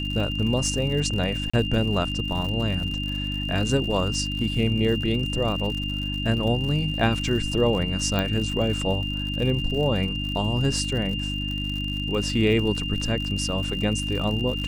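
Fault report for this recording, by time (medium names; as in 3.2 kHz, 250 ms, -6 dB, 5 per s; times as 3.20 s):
crackle 91 per s -31 dBFS
hum 50 Hz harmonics 6 -30 dBFS
whine 2.8 kHz -30 dBFS
1.50–1.53 s: dropout 35 ms
8.19 s: pop -12 dBFS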